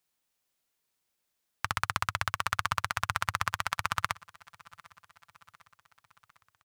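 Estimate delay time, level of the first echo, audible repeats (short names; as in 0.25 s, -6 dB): 0.752 s, -23.5 dB, 3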